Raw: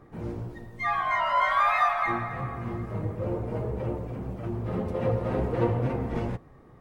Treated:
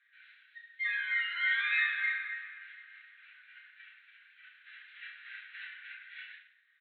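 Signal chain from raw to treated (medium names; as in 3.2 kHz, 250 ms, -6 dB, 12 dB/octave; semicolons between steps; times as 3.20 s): Chebyshev band-pass 1.5–4 kHz, order 5; reverse bouncing-ball echo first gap 30 ms, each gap 1.25×, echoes 5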